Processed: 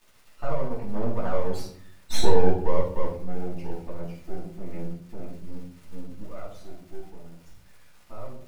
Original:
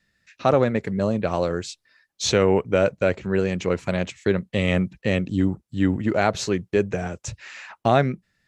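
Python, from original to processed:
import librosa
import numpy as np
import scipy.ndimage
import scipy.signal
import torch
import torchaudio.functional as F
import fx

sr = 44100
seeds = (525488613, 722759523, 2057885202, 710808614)

y = fx.envelope_sharpen(x, sr, power=3.0)
y = fx.doppler_pass(y, sr, speed_mps=22, closest_m=7.8, pass_at_s=1.91)
y = fx.dmg_crackle(y, sr, seeds[0], per_s=550.0, level_db=-44.0)
y = np.maximum(y, 0.0)
y = fx.room_shoebox(y, sr, seeds[1], volume_m3=660.0, walls='furnished', distance_m=9.3)
y = y * librosa.db_to_amplitude(-8.5)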